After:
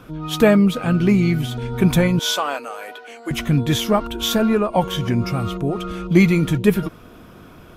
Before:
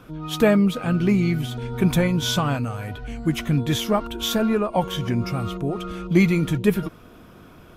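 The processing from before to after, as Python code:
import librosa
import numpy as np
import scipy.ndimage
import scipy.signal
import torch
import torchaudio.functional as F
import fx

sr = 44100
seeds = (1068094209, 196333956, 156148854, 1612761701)

y = fx.highpass(x, sr, hz=400.0, slope=24, at=(2.19, 3.31))
y = y * 10.0 ** (3.5 / 20.0)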